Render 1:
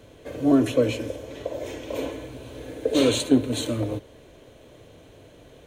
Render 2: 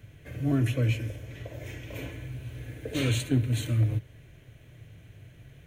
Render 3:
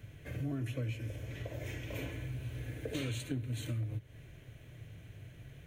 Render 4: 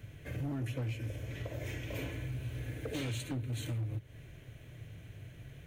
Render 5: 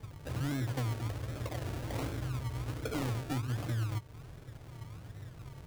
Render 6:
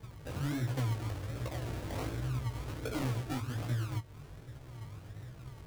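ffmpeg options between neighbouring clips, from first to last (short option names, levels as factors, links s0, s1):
-af "equalizer=f=125:t=o:w=1:g=10,equalizer=f=250:t=o:w=1:g=-8,equalizer=f=500:t=o:w=1:g=-12,equalizer=f=1000:t=o:w=1:g=-11,equalizer=f=2000:t=o:w=1:g=5,equalizer=f=4000:t=o:w=1:g=-9,equalizer=f=8000:t=o:w=1:g=-6"
-af "acompressor=threshold=0.02:ratio=5,volume=0.891"
-af "asoftclip=type=hard:threshold=0.0211,volume=1.19"
-af "acrusher=samples=33:mix=1:aa=0.000001:lfo=1:lforange=19.8:lforate=1.3,volume=1.33"
-af "flanger=delay=15:depth=5.9:speed=1.3,volume=1.33"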